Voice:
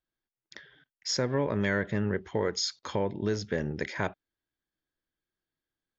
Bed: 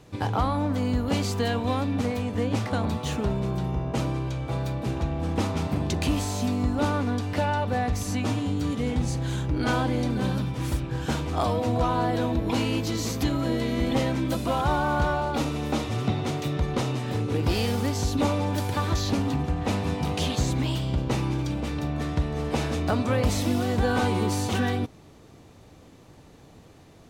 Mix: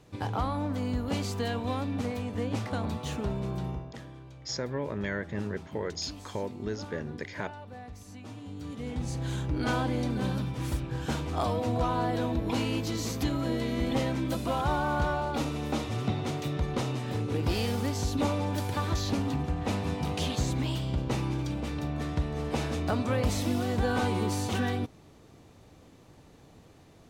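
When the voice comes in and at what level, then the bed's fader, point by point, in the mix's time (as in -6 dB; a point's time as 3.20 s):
3.40 s, -5.0 dB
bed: 3.70 s -5.5 dB
3.99 s -18.5 dB
8.22 s -18.5 dB
9.26 s -4 dB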